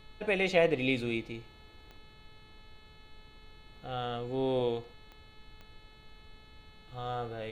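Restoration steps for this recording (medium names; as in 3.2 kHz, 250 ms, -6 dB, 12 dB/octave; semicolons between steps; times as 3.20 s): de-click; de-hum 431.7 Hz, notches 10; noise print and reduce 24 dB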